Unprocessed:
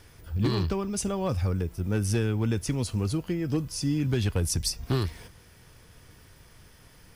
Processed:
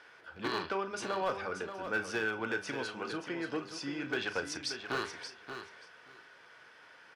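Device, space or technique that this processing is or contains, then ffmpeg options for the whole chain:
megaphone: -filter_complex "[0:a]highpass=590,lowpass=3100,equalizer=frequency=1500:width_type=o:width=0.21:gain=9.5,asoftclip=type=hard:threshold=-27dB,asplit=2[link_01][link_02];[link_02]adelay=36,volume=-12dB[link_03];[link_01][link_03]amix=inputs=2:normalize=0,asettb=1/sr,asplit=3[link_04][link_05][link_06];[link_04]atrim=end=4.194[link_07];[link_05]atrim=start=4.19:end=4.83,asetpts=PTS-STARTPTS,afade=type=in:duration=0.004:curve=qsin,afade=type=out:start_time=0.636:duration=0.004:curve=qsin,lowpass=11000[link_08];[link_06]atrim=start=4.826[link_09];[link_07][link_08]acrossfade=duration=0.004:curve1=hsin:curve2=qsin[link_10];[link_10][link_09]acrossfade=duration=0.004:curve1=qsin:curve2=hsin,aecho=1:1:580|1160:0.355|0.0568,bandreject=frequency=99.74:width_type=h:width=4,bandreject=frequency=199.48:width_type=h:width=4,bandreject=frequency=299.22:width_type=h:width=4,bandreject=frequency=398.96:width_type=h:width=4,bandreject=frequency=498.7:width_type=h:width=4,bandreject=frequency=598.44:width_type=h:width=4,bandreject=frequency=698.18:width_type=h:width=4,bandreject=frequency=797.92:width_type=h:width=4,bandreject=frequency=897.66:width_type=h:width=4,bandreject=frequency=997.4:width_type=h:width=4,bandreject=frequency=1097.14:width_type=h:width=4,bandreject=frequency=1196.88:width_type=h:width=4,bandreject=frequency=1296.62:width_type=h:width=4,bandreject=frequency=1396.36:width_type=h:width=4,bandreject=frequency=1496.1:width_type=h:width=4,bandreject=frequency=1595.84:width_type=h:width=4,bandreject=frequency=1695.58:width_type=h:width=4,bandreject=frequency=1795.32:width_type=h:width=4,bandreject=frequency=1895.06:width_type=h:width=4,bandreject=frequency=1994.8:width_type=h:width=4,bandreject=frequency=2094.54:width_type=h:width=4,bandreject=frequency=2194.28:width_type=h:width=4,bandreject=frequency=2294.02:width_type=h:width=4,bandreject=frequency=2393.76:width_type=h:width=4,bandreject=frequency=2493.5:width_type=h:width=4,bandreject=frequency=2593.24:width_type=h:width=4,bandreject=frequency=2692.98:width_type=h:width=4,bandreject=frequency=2792.72:width_type=h:width=4,bandreject=frequency=2892.46:width_type=h:width=4,bandreject=frequency=2992.2:width_type=h:width=4,bandreject=frequency=3091.94:width_type=h:width=4,bandreject=frequency=3191.68:width_type=h:width=4,bandreject=frequency=3291.42:width_type=h:width=4,bandreject=frequency=3391.16:width_type=h:width=4,bandreject=frequency=3490.9:width_type=h:width=4,bandreject=frequency=3590.64:width_type=h:width=4,volume=2dB"

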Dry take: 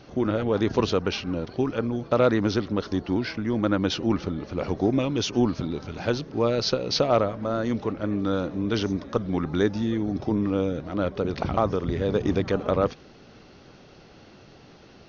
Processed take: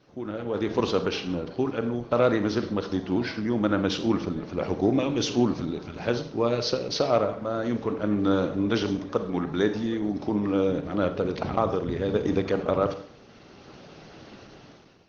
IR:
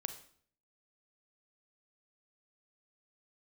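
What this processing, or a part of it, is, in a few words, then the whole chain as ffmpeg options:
far-field microphone of a smart speaker: -filter_complex "[0:a]asettb=1/sr,asplit=3[link_01][link_02][link_03];[link_01]atrim=end=8.954[link_04];[link_02]atrim=start=8.95:end=10.69,asetpts=PTS-STARTPTS,afade=type=in:duration=0.004:curve=qsin,afade=type=out:start_time=1.736:duration=0.004:curve=qsin,lowshelf=frequency=160:gain=-6[link_05];[link_03]atrim=start=10.686[link_06];[link_04][link_05]acrossfade=duration=0.004:curve1=hsin:curve2=qsin[link_07];[link_07][link_06]acrossfade=duration=0.004:curve1=qsin:curve2=hsin[link_08];[1:a]atrim=start_sample=2205[link_09];[link_08][link_09]afir=irnorm=-1:irlink=0,highpass=frequency=120:poles=1,dynaudnorm=framelen=240:gausssize=5:maxgain=15dB,volume=-8dB" -ar 48000 -c:a libopus -b:a 16k

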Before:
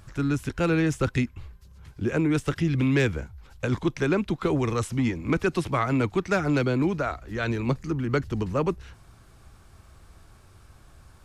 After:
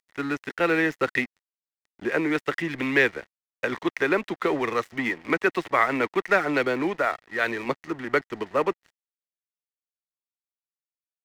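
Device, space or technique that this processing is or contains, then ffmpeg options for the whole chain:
pocket radio on a weak battery: -af "highpass=400,lowpass=3700,aeval=exprs='sgn(val(0))*max(abs(val(0))-0.00501,0)':channel_layout=same,equalizer=frequency=1900:width_type=o:width=0.23:gain=11,volume=5dB"

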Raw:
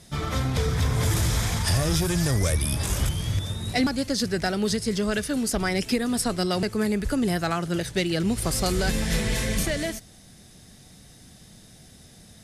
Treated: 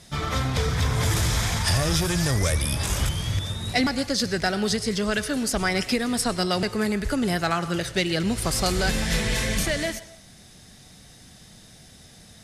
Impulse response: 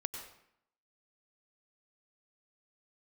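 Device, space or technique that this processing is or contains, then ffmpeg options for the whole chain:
filtered reverb send: -filter_complex "[0:a]asplit=2[link_01][link_02];[link_02]highpass=520,lowpass=8500[link_03];[1:a]atrim=start_sample=2205[link_04];[link_03][link_04]afir=irnorm=-1:irlink=0,volume=-5.5dB[link_05];[link_01][link_05]amix=inputs=2:normalize=0"

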